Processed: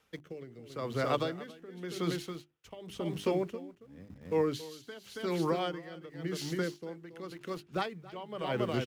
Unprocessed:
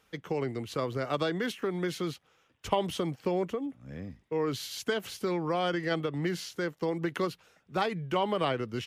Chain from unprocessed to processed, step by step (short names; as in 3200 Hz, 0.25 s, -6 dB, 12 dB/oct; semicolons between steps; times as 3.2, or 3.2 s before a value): notches 50/100/150/200/250/300/350/400 Hz; rotary speaker horn 0.85 Hz, later 5.5 Hz, at 2.15; echo 0.277 s -7 dB; in parallel at -6.5 dB: sample gate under -44.5 dBFS; on the sum: dB-linear tremolo 0.92 Hz, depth 18 dB